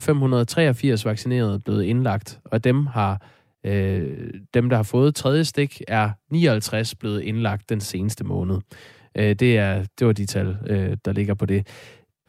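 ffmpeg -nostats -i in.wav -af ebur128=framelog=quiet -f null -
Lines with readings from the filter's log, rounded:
Integrated loudness:
  I:         -22.1 LUFS
  Threshold: -32.4 LUFS
Loudness range:
  LRA:         2.3 LU
  Threshold: -42.5 LUFS
  LRA low:   -23.7 LUFS
  LRA high:  -21.4 LUFS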